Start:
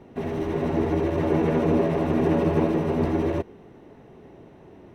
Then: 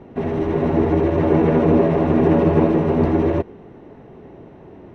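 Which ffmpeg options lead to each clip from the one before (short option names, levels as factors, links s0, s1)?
-af "aemphasis=mode=reproduction:type=75kf,volume=2.11"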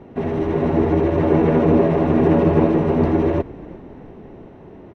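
-filter_complex "[0:a]asplit=6[s0][s1][s2][s3][s4][s5];[s1]adelay=350,afreqshift=-35,volume=0.0794[s6];[s2]adelay=700,afreqshift=-70,volume=0.0501[s7];[s3]adelay=1050,afreqshift=-105,volume=0.0316[s8];[s4]adelay=1400,afreqshift=-140,volume=0.02[s9];[s5]adelay=1750,afreqshift=-175,volume=0.0124[s10];[s0][s6][s7][s8][s9][s10]amix=inputs=6:normalize=0"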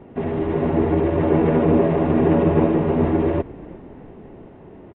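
-af "aresample=8000,aresample=44100,volume=0.841"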